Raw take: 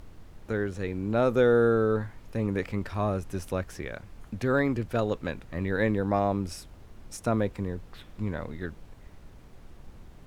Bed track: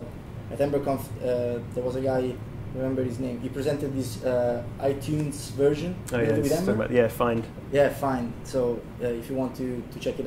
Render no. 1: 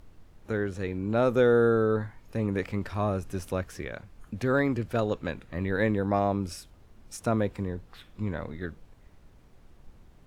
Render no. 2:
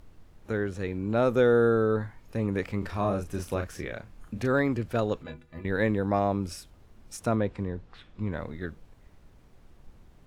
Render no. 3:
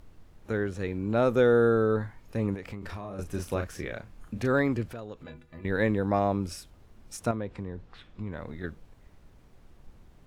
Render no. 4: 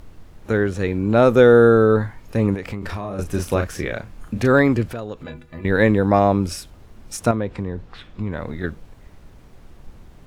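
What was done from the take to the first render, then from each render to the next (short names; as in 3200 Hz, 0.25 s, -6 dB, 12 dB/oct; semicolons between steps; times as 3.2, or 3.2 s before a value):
noise print and reduce 6 dB
2.79–4.47 doubler 35 ms -6 dB; 5.23–5.65 metallic resonator 73 Hz, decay 0.28 s, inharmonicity 0.03; 7.35–8.33 air absorption 81 m
2.54–3.19 compressor 16:1, threshold -33 dBFS; 4.92–5.63 compressor 3:1, threshold -40 dBFS; 7.31–8.64 compressor 2:1, threshold -34 dBFS
gain +10 dB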